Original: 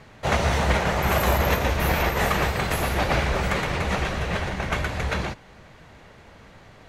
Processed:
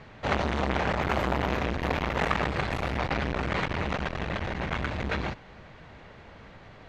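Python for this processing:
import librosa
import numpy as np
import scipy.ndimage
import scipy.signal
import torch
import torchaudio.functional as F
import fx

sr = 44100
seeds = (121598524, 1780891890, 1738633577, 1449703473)

y = scipy.signal.sosfilt(scipy.signal.butter(2, 4300.0, 'lowpass', fs=sr, output='sos'), x)
y = fx.transformer_sat(y, sr, knee_hz=930.0)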